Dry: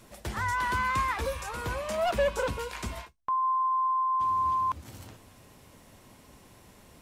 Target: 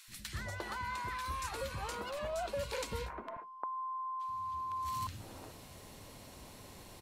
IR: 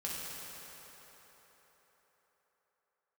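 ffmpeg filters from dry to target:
-filter_complex "[0:a]equalizer=f=4200:w=6.6:g=6,bandreject=f=60:t=h:w=6,bandreject=f=120:t=h:w=6,bandreject=f=180:t=h:w=6,bandreject=f=240:t=h:w=6,acompressor=threshold=0.0126:ratio=10,acrossover=split=250|1500[s0][s1][s2];[s0]adelay=80[s3];[s1]adelay=350[s4];[s3][s4][s2]amix=inputs=3:normalize=0,volume=1.41"

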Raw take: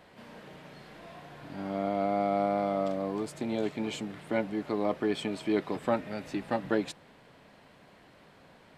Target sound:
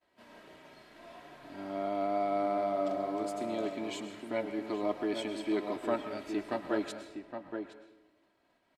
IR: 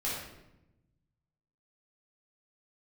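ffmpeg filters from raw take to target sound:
-filter_complex "[0:a]bass=f=250:g=-5,treble=f=4000:g=1,aecho=1:1:3.1:0.49,agate=range=0.0224:threshold=0.00447:ratio=3:detection=peak,asplit=2[s0][s1];[s1]adelay=816.3,volume=0.501,highshelf=f=4000:g=-18.4[s2];[s0][s2]amix=inputs=2:normalize=0,asplit=2[s3][s4];[1:a]atrim=start_sample=2205,lowshelf=f=380:g=-11,adelay=104[s5];[s4][s5]afir=irnorm=-1:irlink=0,volume=0.2[s6];[s3][s6]amix=inputs=2:normalize=0,volume=0.596"

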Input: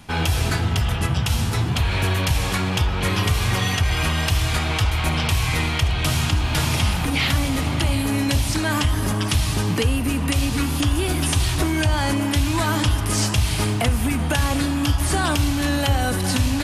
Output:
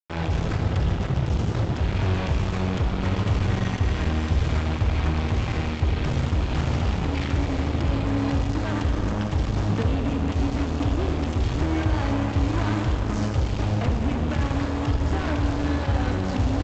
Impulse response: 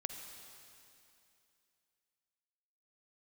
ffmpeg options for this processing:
-filter_complex "[0:a]acrossover=split=2500[s0][s1];[s1]acompressor=threshold=0.0251:ratio=4:attack=1:release=60[s2];[s0][s2]amix=inputs=2:normalize=0,tiltshelf=f=730:g=5.5,aresample=16000,acrusher=bits=2:mix=0:aa=0.5,aresample=44100[s3];[1:a]atrim=start_sample=2205[s4];[s3][s4]afir=irnorm=-1:irlink=0,volume=0.447"

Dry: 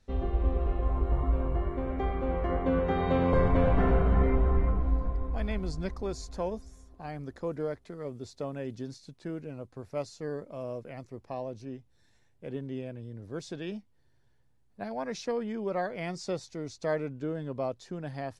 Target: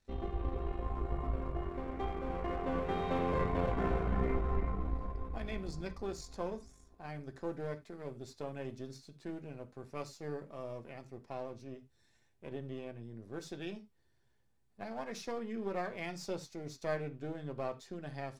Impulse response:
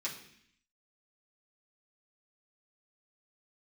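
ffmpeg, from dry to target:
-filter_complex "[0:a]aeval=exprs='if(lt(val(0),0),0.447*val(0),val(0))':c=same,asplit=2[s0][s1];[1:a]atrim=start_sample=2205,atrim=end_sample=4410[s2];[s1][s2]afir=irnorm=-1:irlink=0,volume=0.531[s3];[s0][s3]amix=inputs=2:normalize=0,volume=0.562"

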